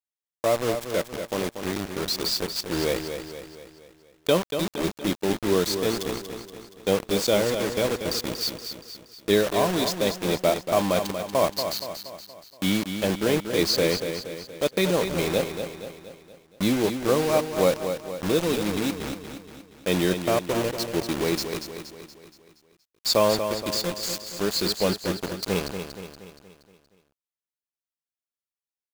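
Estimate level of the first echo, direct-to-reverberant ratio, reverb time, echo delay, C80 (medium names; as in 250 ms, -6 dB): -8.0 dB, no reverb, no reverb, 236 ms, no reverb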